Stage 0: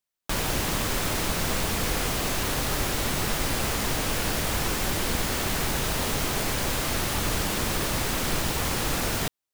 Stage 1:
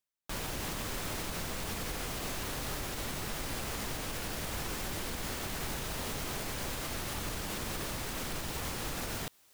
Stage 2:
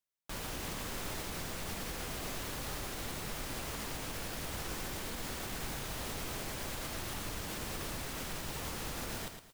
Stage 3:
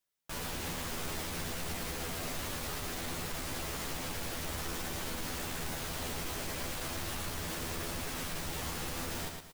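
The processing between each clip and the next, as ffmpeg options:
-af "areverse,acompressor=mode=upward:threshold=-30dB:ratio=2.5,areverse,alimiter=limit=-18dB:level=0:latency=1:release=54,volume=-9dB"
-af "aecho=1:1:112|224|336|448:0.422|0.131|0.0405|0.0126,volume=-3.5dB"
-filter_complex "[0:a]asoftclip=type=tanh:threshold=-38.5dB,asplit=2[a][b];[b]adelay=12,volume=-2.5dB[c];[a][c]amix=inputs=2:normalize=0,volume=3.5dB"

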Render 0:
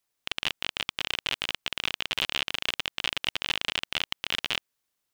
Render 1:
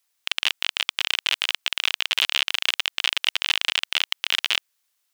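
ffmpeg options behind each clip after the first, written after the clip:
-af "highpass=f=1.5k:p=1,volume=8dB"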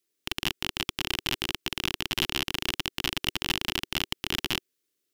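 -af "lowshelf=f=550:t=q:w=3:g=13.5,aeval=exprs='0.891*(cos(1*acos(clip(val(0)/0.891,-1,1)))-cos(1*PI/2))+0.141*(cos(8*acos(clip(val(0)/0.891,-1,1)))-cos(8*PI/2))':c=same,volume=-7dB"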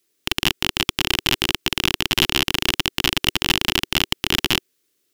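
-af "apsyclip=11.5dB,volume=-1.5dB"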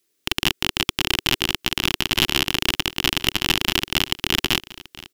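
-af "aecho=1:1:1022:0.119,volume=-1dB"

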